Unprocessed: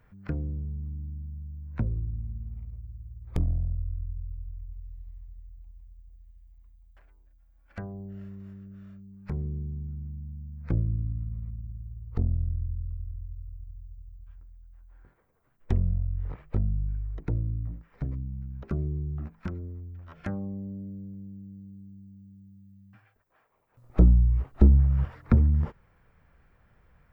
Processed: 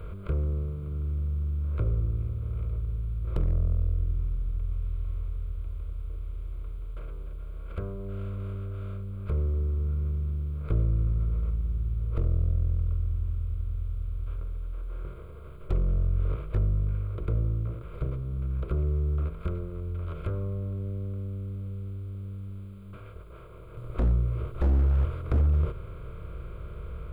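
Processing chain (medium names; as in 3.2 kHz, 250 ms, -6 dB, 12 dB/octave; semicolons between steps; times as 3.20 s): spectral levelling over time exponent 0.4; flange 0.26 Hz, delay 4.2 ms, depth 6.3 ms, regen -68%; static phaser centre 1.2 kHz, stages 8; wavefolder -17 dBFS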